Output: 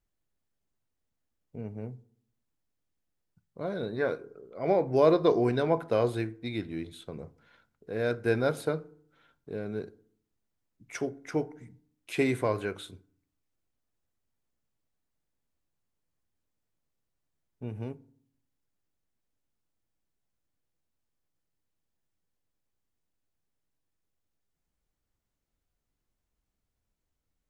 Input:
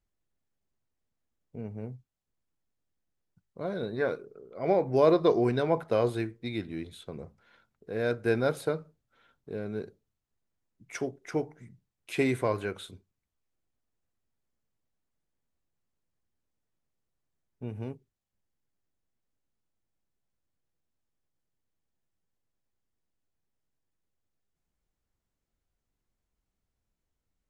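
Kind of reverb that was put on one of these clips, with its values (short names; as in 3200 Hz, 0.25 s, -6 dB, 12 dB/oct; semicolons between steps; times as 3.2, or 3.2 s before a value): FDN reverb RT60 0.6 s, low-frequency decay 1.4×, high-frequency decay 0.55×, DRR 17.5 dB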